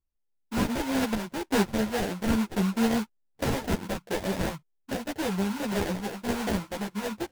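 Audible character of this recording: random-step tremolo; aliases and images of a low sample rate 1200 Hz, jitter 20%; a shimmering, thickened sound

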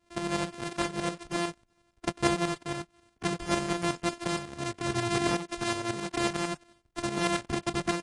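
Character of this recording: a buzz of ramps at a fixed pitch in blocks of 128 samples; tremolo saw up 11 Hz, depth 65%; AAC

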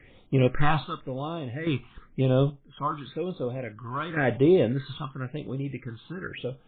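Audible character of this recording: phasing stages 6, 0.95 Hz, lowest notch 490–1900 Hz; random-step tremolo 1.2 Hz, depth 70%; MP3

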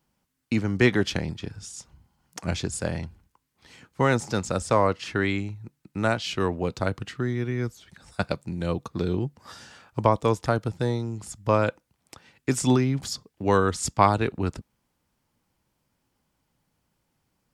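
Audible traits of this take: noise floor -76 dBFS; spectral tilt -5.5 dB/oct

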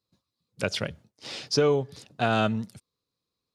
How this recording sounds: noise floor -86 dBFS; spectral tilt -5.0 dB/oct

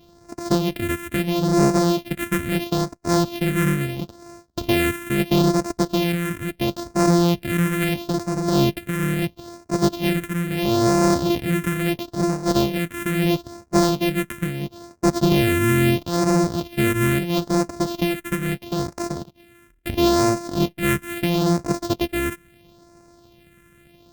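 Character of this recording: a buzz of ramps at a fixed pitch in blocks of 128 samples; phasing stages 4, 0.75 Hz, lowest notch 750–3100 Hz; Opus

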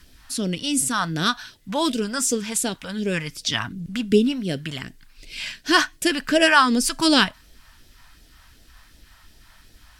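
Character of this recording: phasing stages 2, 2.7 Hz, lowest notch 350–1100 Hz

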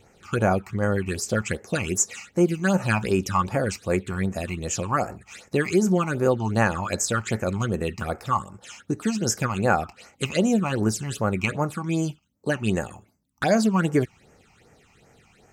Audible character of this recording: phasing stages 8, 2.6 Hz, lowest notch 470–3800 Hz

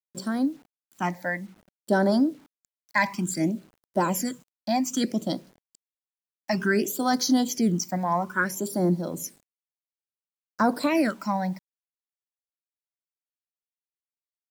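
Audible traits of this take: phasing stages 8, 0.59 Hz, lowest notch 380–2700 Hz; a quantiser's noise floor 10-bit, dither none

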